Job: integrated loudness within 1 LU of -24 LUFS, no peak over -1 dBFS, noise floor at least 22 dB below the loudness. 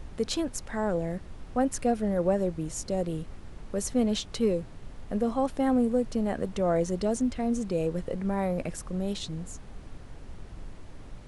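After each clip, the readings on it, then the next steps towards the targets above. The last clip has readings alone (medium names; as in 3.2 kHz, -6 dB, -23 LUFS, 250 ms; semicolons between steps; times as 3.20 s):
noise floor -45 dBFS; noise floor target -52 dBFS; loudness -29.5 LUFS; peak level -13.5 dBFS; loudness target -24.0 LUFS
-> noise print and reduce 7 dB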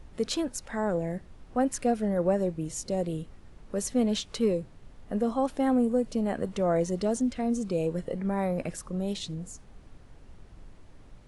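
noise floor -52 dBFS; loudness -29.5 LUFS; peak level -14.0 dBFS; loudness target -24.0 LUFS
-> trim +5.5 dB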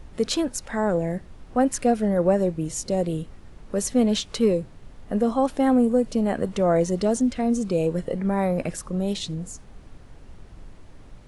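loudness -24.0 LUFS; peak level -8.5 dBFS; noise floor -47 dBFS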